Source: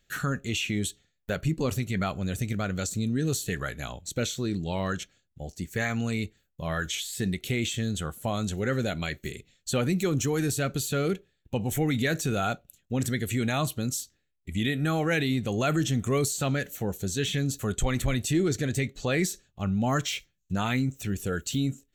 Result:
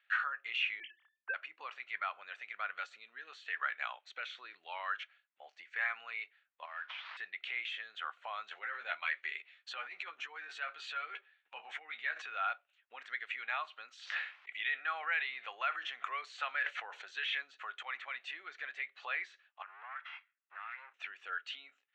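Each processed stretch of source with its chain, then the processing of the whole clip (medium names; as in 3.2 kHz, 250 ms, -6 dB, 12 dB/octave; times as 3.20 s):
0.80–1.34 s: formants replaced by sine waves + band-stop 2.5 kHz, Q 16 + doubling 32 ms -13 dB
6.65–7.17 s: CVSD coder 32 kbps + compression 16:1, threshold -38 dBFS + three bands expanded up and down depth 40%
8.51–12.22 s: doubling 13 ms -5 dB + compressor with a negative ratio -31 dBFS
13.95–17.42 s: bass shelf 180 Hz -10.5 dB + decay stretcher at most 21 dB/s
19.62–20.94 s: comb filter that takes the minimum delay 1.5 ms + band-pass filter 1.6 kHz, Q 1.5 + compression 4:1, threshold -46 dBFS
whole clip: low-pass 2.6 kHz 24 dB/octave; compression, threshold -31 dBFS; high-pass 1 kHz 24 dB/octave; trim +4.5 dB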